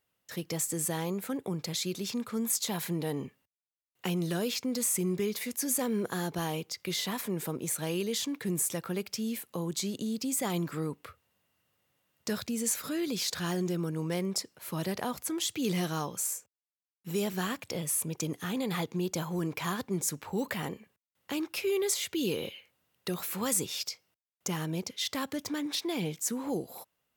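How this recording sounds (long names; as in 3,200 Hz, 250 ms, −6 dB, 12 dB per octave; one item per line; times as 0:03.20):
background noise floor −96 dBFS
spectral slope −4.0 dB per octave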